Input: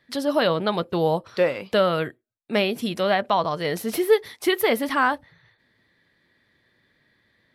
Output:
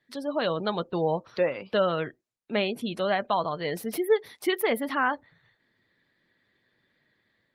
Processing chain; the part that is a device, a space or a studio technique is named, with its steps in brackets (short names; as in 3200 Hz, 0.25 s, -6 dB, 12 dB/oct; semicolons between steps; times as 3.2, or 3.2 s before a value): noise-suppressed video call (HPF 100 Hz 12 dB/oct; spectral gate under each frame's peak -30 dB strong; AGC gain up to 4 dB; gain -8 dB; Opus 24 kbps 48000 Hz)